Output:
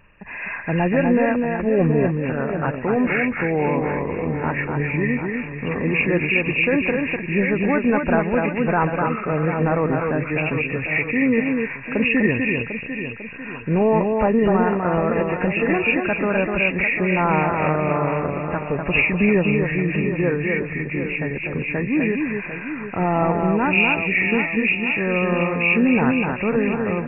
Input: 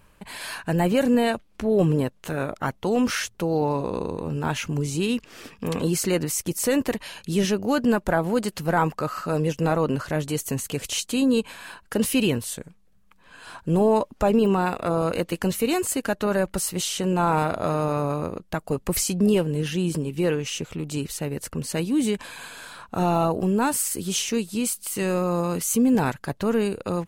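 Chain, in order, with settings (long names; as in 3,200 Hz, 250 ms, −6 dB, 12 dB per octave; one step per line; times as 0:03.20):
hearing-aid frequency compression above 1,600 Hz 4 to 1
delay that swaps between a low-pass and a high-pass 249 ms, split 2,300 Hz, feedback 72%, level −4 dB
level +1.5 dB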